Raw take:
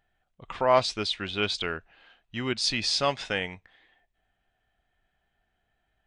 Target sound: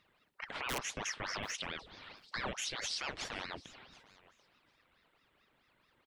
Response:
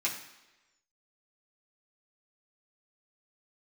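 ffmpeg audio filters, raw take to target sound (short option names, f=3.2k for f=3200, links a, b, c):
-filter_complex "[0:a]highpass=61,equalizer=f=6.3k:t=o:w=0.23:g=-7.5,bandreject=f=122.5:t=h:w=4,bandreject=f=245:t=h:w=4,acrossover=split=150[a][b];[b]aeval=exprs='(mod(3.76*val(0)+1,2)-1)/3.76':c=same[c];[a][c]amix=inputs=2:normalize=0,acompressor=threshold=-34dB:ratio=6,alimiter=level_in=9dB:limit=-24dB:level=0:latency=1:release=115,volume=-9dB,aecho=1:1:739|1478:0.0891|0.0152,aeval=exprs='val(0)*sin(2*PI*1100*n/s+1100*0.85/4.6*sin(2*PI*4.6*n/s))':c=same,volume=7dB"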